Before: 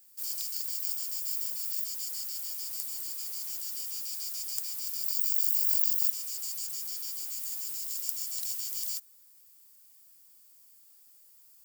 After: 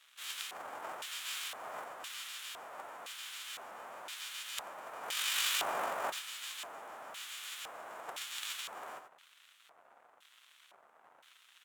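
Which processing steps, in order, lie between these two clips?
formants flattened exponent 0.3; crackle 210 per s -42 dBFS; peaking EQ 4.8 kHz -11.5 dB 0.67 oct; delay 88 ms -8.5 dB; LFO band-pass square 0.98 Hz 690–3500 Hz; peaking EQ 1.3 kHz +9.5 dB 1.1 oct; upward expansion 1.5:1, over -53 dBFS; trim +11 dB

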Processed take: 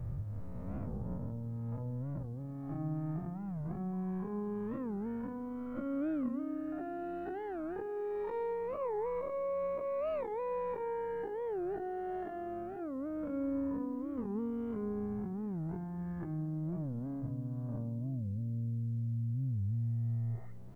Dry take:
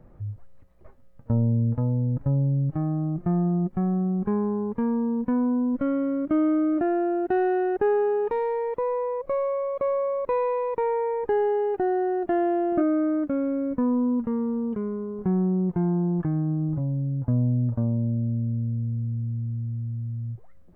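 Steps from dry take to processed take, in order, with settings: reverse spectral sustain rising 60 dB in 2.36 s; compressor with a negative ratio -29 dBFS, ratio -1; feedback comb 200 Hz, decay 0.17 s, harmonics all, mix 30%; peak limiter -26 dBFS, peak gain reduction 7 dB; hum notches 50/100/150/200/250/300/350 Hz; on a send: bucket-brigade echo 250 ms, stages 2048, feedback 54%, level -23 dB; on the sum: FDN reverb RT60 2.2 s, low-frequency decay 1.5×, high-frequency decay 0.45×, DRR 15.5 dB; word length cut 12-bit, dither none; warped record 45 rpm, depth 250 cents; trim -5 dB

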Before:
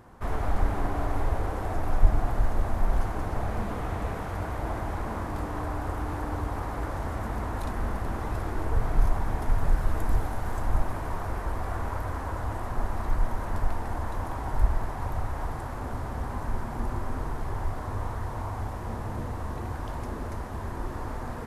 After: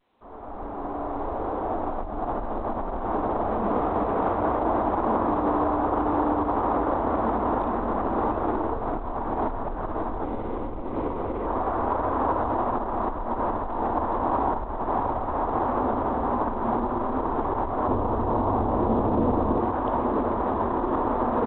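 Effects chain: fade-in on the opening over 6.24 s; compression 8:1, threshold -29 dBFS, peak gain reduction 15.5 dB; peak limiter -30 dBFS, peak gain reduction 8 dB; high-order bell 520 Hz +15.5 dB 2.9 oct; delay 829 ms -22 dB; 10.25–11.46 s: time-frequency box 580–1900 Hz -8 dB; 17.88–19.60 s: tilt shelf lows +5.5 dB, about 740 Hz; trim +3 dB; A-law 64 kbps 8 kHz

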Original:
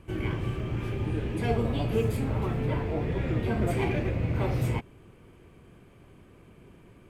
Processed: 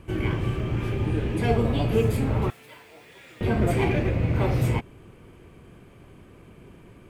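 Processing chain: 2.50–3.41 s: differentiator; trim +4.5 dB

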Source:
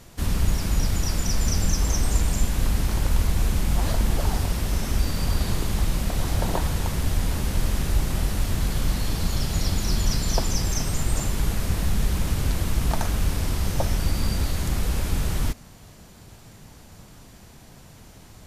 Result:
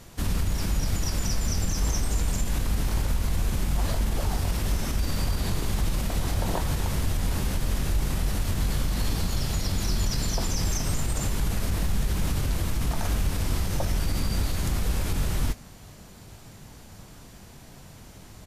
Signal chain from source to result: peak limiter -17.5 dBFS, peak gain reduction 8.5 dB; doubling 21 ms -11.5 dB

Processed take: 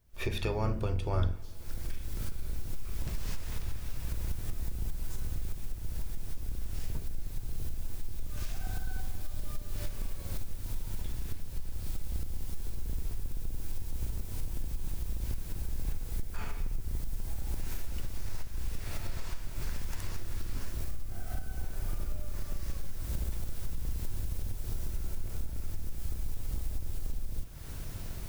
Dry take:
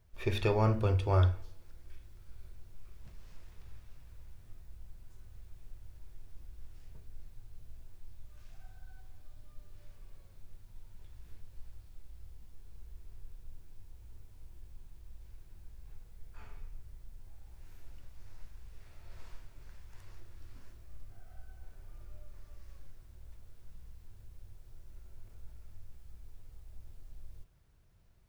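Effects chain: octave divider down 2 oct, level 0 dB; recorder AGC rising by 45 dB/s; treble shelf 4.9 kHz +8.5 dB; trim -5 dB

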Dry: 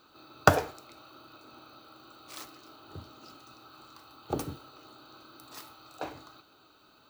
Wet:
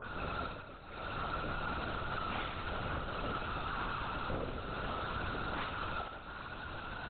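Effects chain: delay that grows with frequency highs late, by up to 102 ms; compression 8:1, threshold -48 dBFS, peak gain reduction 32 dB; small resonant body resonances 220/470/1500 Hz, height 10 dB, ringing for 45 ms; overdrive pedal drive 18 dB, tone 3.1 kHz, clips at -38 dBFS; slow attack 714 ms; on a send: reverse bouncing-ball echo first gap 60 ms, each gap 1.6×, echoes 5; on the sum: LPC vocoder at 8 kHz whisper; trim +7 dB

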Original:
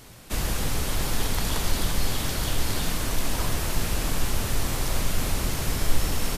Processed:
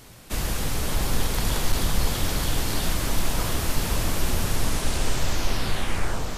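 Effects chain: tape stop on the ending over 1.97 s; echo whose repeats swap between lows and highs 510 ms, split 1.4 kHz, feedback 68%, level -3.5 dB; hard clipper -10.5 dBFS, distortion -36 dB

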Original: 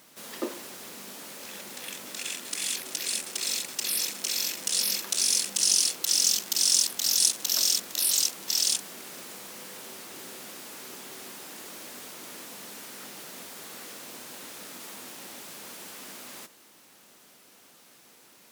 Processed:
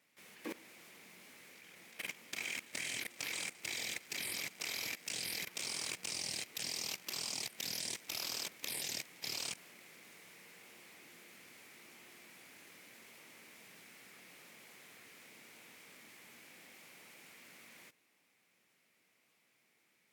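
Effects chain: tape speed -8%; in parallel at -10.5 dB: decimation with a swept rate 28×, swing 60% 0.81 Hz; on the sum: high-pass 96 Hz 24 dB/octave; peaking EQ 2.2 kHz +13 dB 0.66 oct; level held to a coarse grid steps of 17 dB; trim -7 dB

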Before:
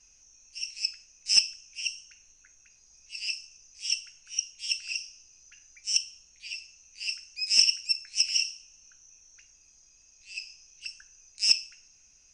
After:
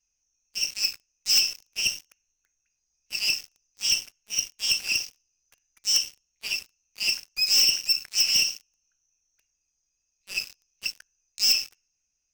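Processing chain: waveshaping leveller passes 5; trim -8.5 dB

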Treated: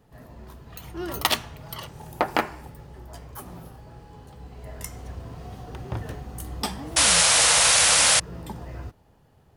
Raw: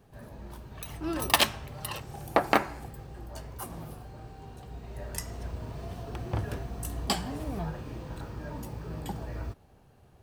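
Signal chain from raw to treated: tape speed +7%; painted sound noise, 6.96–8.20 s, 460–11000 Hz -18 dBFS

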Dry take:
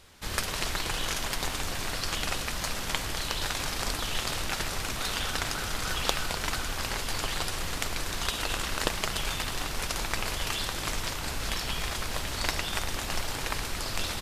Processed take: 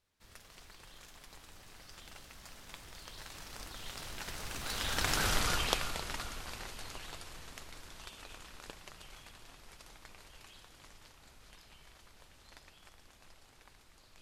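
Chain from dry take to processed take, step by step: Doppler pass-by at 5.29 s, 24 m/s, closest 5.6 m; trim +2 dB

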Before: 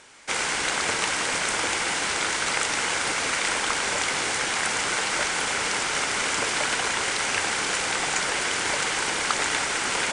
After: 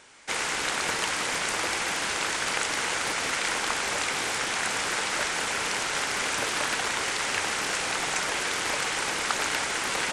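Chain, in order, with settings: loudspeaker Doppler distortion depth 0.5 ms; trim -2.5 dB

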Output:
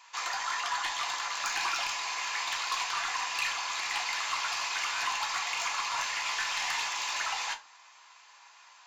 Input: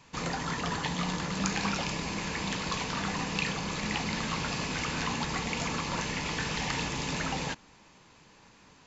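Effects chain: Chebyshev high-pass 900 Hz, order 3; saturation -27.5 dBFS, distortion -16 dB; on a send: reverberation RT60 0.30 s, pre-delay 3 ms, DRR 3 dB; on the sum: trim +3 dB

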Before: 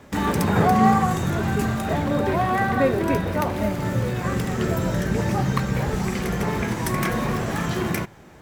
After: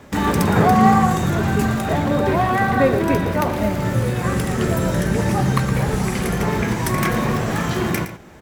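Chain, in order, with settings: 3.94–6.37 s: peaking EQ 9.9 kHz +8.5 dB 0.32 oct; delay 115 ms -11.5 dB; trim +3.5 dB

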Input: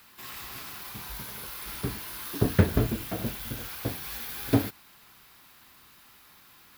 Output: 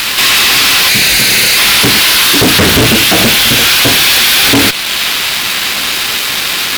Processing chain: 0.89–1.57 s: comb filter that takes the minimum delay 0.45 ms; frequency weighting D; in parallel at -1 dB: compression, threshold -41 dBFS, peak gain reduction 22 dB; on the sum: fuzz box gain 45 dB, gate -45 dBFS; repeats whose band climbs or falls 658 ms, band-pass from 3.3 kHz, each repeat -0.7 oct, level -10 dB; loudspeaker Doppler distortion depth 0.25 ms; trim +7.5 dB

